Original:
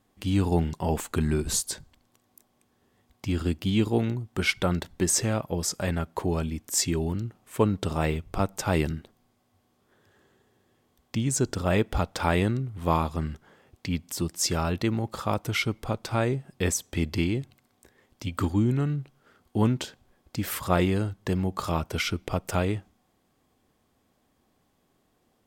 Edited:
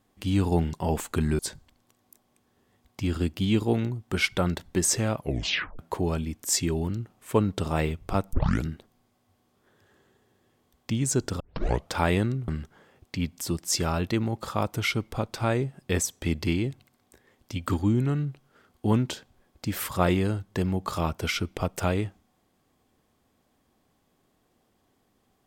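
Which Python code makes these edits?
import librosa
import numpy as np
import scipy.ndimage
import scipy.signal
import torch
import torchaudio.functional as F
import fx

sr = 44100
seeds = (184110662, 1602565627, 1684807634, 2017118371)

y = fx.edit(x, sr, fx.cut(start_s=1.39, length_s=0.25),
    fx.tape_stop(start_s=5.43, length_s=0.61),
    fx.tape_start(start_s=8.58, length_s=0.32),
    fx.tape_start(start_s=11.65, length_s=0.5),
    fx.cut(start_s=12.73, length_s=0.46), tone=tone)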